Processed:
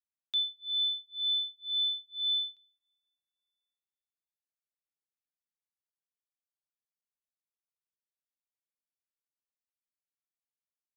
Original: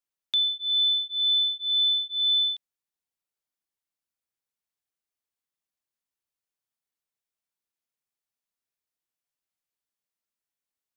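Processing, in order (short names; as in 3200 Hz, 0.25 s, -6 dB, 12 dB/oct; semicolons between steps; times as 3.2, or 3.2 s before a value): plate-style reverb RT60 4.3 s, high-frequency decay 0.55×, DRR 16.5 dB; upward expander 2.5:1, over -33 dBFS; gain -5.5 dB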